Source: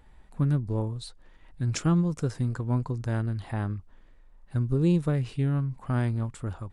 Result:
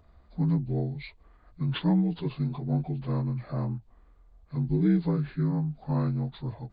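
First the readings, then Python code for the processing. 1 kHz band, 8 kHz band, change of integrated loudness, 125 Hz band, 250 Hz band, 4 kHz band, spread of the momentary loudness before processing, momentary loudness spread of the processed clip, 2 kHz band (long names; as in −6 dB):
−1.5 dB, below −35 dB, −1.0 dB, −1.5 dB, +1.0 dB, +0.5 dB, 10 LU, 11 LU, −4.0 dB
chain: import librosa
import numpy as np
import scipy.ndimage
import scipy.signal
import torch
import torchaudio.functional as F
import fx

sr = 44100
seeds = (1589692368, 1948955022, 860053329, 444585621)

y = fx.partial_stretch(x, sr, pct=78)
y = fx.end_taper(y, sr, db_per_s=400.0)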